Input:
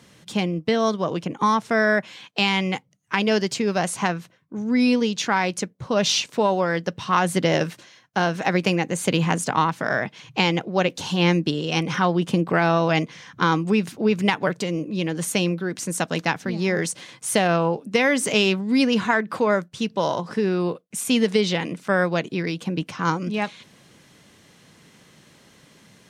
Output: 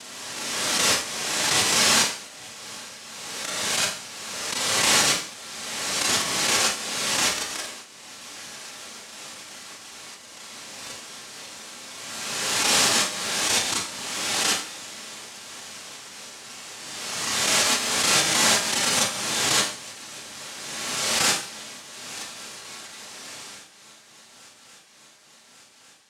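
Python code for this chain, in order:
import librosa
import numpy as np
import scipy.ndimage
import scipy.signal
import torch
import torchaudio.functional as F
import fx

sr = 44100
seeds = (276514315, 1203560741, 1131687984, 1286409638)

y = scipy.signal.sosfilt(scipy.signal.ellip(4, 1.0, 40, 220.0, 'highpass', fs=sr, output='sos'), x)
y = fx.hum_notches(y, sr, base_hz=60, count=10)
y = fx.auto_swell(y, sr, attack_ms=122.0)
y = fx.level_steps(y, sr, step_db=22)
y = fx.noise_vocoder(y, sr, seeds[0], bands=1)
y = fx.echo_swing(y, sr, ms=1150, ratio=3, feedback_pct=71, wet_db=-23)
y = fx.rev_schroeder(y, sr, rt60_s=0.47, comb_ms=28, drr_db=-10.0)
y = fx.pre_swell(y, sr, db_per_s=26.0)
y = y * librosa.db_to_amplitude(-7.0)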